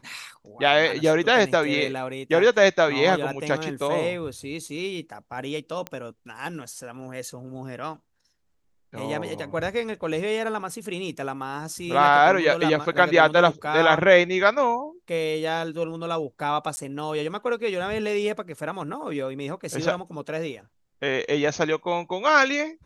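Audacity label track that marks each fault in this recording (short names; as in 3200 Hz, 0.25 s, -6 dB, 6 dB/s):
5.870000	5.870000	pop -16 dBFS
16.760000	16.770000	gap 10 ms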